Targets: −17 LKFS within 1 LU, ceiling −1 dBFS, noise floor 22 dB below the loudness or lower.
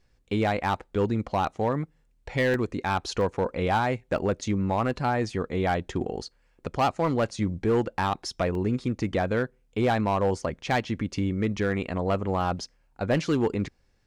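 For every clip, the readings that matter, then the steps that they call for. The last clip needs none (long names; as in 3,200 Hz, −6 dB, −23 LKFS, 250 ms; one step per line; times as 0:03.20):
share of clipped samples 1.3%; peaks flattened at −17.5 dBFS; number of dropouts 5; longest dropout 1.3 ms; integrated loudness −27.5 LKFS; sample peak −17.5 dBFS; target loudness −17.0 LKFS
→ clipped peaks rebuilt −17.5 dBFS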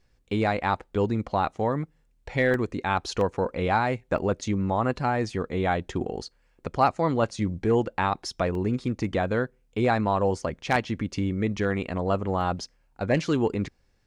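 share of clipped samples 0.0%; number of dropouts 5; longest dropout 1.3 ms
→ repair the gap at 0:02.54/0:03.21/0:04.18/0:08.55/0:12.41, 1.3 ms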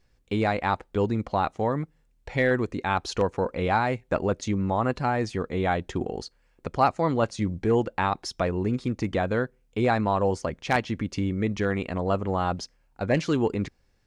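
number of dropouts 0; integrated loudness −27.0 LKFS; sample peak −8.5 dBFS; target loudness −17.0 LKFS
→ level +10 dB
brickwall limiter −1 dBFS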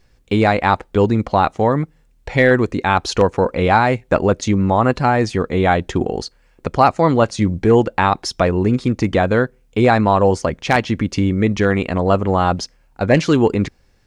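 integrated loudness −17.0 LKFS; sample peak −1.0 dBFS; background noise floor −55 dBFS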